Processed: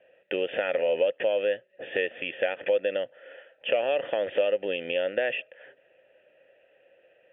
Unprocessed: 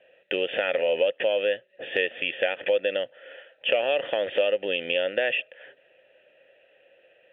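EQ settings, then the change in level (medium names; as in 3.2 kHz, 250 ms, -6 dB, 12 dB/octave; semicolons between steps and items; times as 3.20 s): distance through air 360 m; 0.0 dB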